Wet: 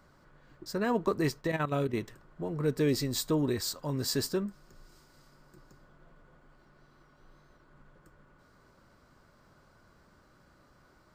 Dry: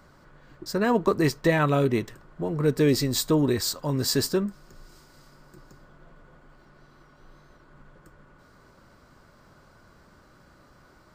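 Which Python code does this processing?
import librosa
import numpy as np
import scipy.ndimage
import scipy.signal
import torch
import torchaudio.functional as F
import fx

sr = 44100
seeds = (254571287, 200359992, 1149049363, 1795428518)

y = fx.level_steps(x, sr, step_db=11, at=(1.4, 1.95), fade=0.02)
y = F.gain(torch.from_numpy(y), -6.5).numpy()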